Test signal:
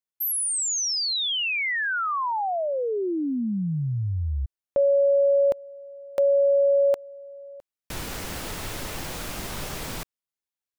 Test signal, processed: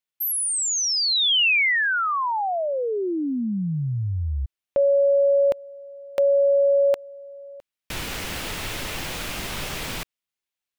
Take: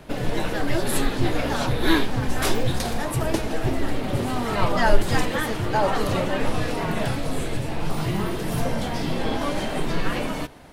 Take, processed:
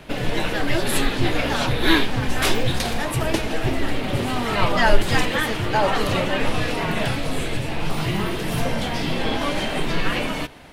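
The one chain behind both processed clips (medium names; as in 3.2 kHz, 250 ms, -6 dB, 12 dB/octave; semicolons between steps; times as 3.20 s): peaking EQ 2.7 kHz +6.5 dB 1.4 oct; trim +1 dB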